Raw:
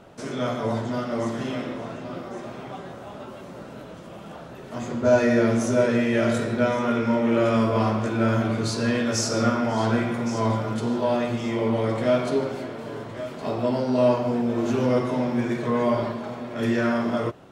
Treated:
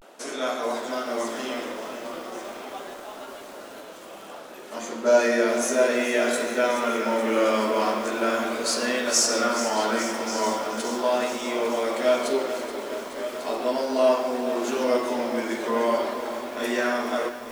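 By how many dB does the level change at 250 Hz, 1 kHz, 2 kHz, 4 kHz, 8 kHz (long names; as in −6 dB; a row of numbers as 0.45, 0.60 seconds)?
−6.0, +1.5, +2.5, +5.0, +7.5 decibels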